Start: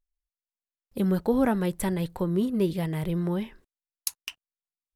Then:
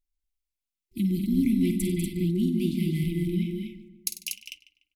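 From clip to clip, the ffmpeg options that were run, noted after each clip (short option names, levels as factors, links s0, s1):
-filter_complex "[0:a]asplit=2[s0][s1];[s1]aecho=0:1:51|96|195|240:0.299|0.178|0.422|0.562[s2];[s0][s2]amix=inputs=2:normalize=0,afftfilt=real='re*(1-between(b*sr/4096,370,2000))':imag='im*(1-between(b*sr/4096,370,2000))':win_size=4096:overlap=0.75,asplit=2[s3][s4];[s4]adelay=147,lowpass=f=2000:p=1,volume=0.251,asplit=2[s5][s6];[s6]adelay=147,lowpass=f=2000:p=1,volume=0.5,asplit=2[s7][s8];[s8]adelay=147,lowpass=f=2000:p=1,volume=0.5,asplit=2[s9][s10];[s10]adelay=147,lowpass=f=2000:p=1,volume=0.5,asplit=2[s11][s12];[s12]adelay=147,lowpass=f=2000:p=1,volume=0.5[s13];[s5][s7][s9][s11][s13]amix=inputs=5:normalize=0[s14];[s3][s14]amix=inputs=2:normalize=0"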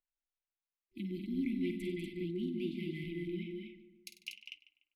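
-filter_complex "[0:a]acrossover=split=330 3200:gain=0.158 1 0.0708[s0][s1][s2];[s0][s1][s2]amix=inputs=3:normalize=0,volume=0.708"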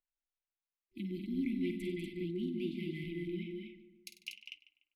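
-af anull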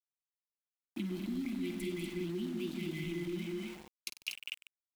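-filter_complex "[0:a]acrossover=split=4100[s0][s1];[s0]acompressor=threshold=0.00708:ratio=6[s2];[s2][s1]amix=inputs=2:normalize=0,aeval=exprs='val(0)*gte(abs(val(0)),0.00188)':c=same,volume=2.51"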